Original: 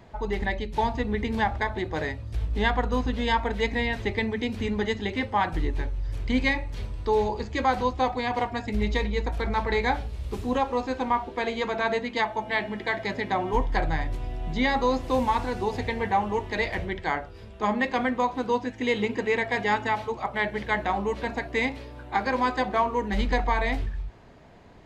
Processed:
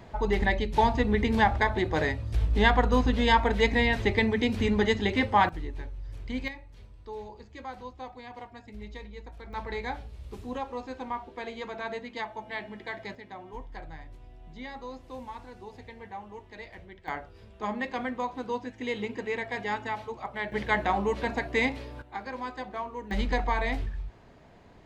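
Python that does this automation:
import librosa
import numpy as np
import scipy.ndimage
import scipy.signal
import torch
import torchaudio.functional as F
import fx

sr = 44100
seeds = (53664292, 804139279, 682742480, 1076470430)

y = fx.gain(x, sr, db=fx.steps((0.0, 2.5), (5.49, -9.0), (6.48, -16.5), (9.53, -9.5), (13.15, -17.0), (17.08, -7.0), (20.52, 0.0), (22.02, -11.5), (23.11, -3.0)))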